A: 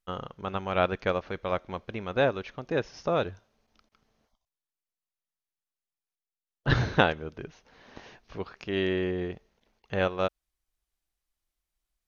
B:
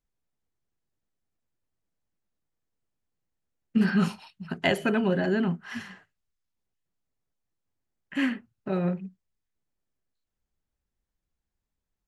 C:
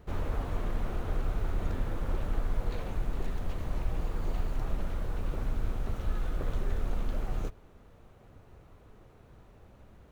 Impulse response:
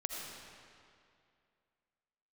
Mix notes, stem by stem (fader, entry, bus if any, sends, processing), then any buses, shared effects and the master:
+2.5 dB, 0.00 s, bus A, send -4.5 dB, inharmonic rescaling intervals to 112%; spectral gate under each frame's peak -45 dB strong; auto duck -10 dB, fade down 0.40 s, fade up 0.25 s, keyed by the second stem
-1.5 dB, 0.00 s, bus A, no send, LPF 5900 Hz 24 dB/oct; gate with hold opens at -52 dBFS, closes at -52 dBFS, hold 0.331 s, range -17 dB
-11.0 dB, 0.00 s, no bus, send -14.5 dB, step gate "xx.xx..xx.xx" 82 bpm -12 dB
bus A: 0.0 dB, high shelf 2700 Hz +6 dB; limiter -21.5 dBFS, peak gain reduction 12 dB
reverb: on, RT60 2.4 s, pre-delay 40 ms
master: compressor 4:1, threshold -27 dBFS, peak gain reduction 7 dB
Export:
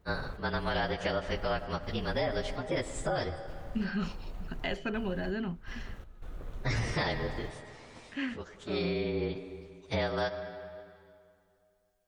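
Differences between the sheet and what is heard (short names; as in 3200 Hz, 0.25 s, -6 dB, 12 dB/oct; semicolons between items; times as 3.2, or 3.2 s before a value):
stem B -1.5 dB -> -9.0 dB; reverb return -7.5 dB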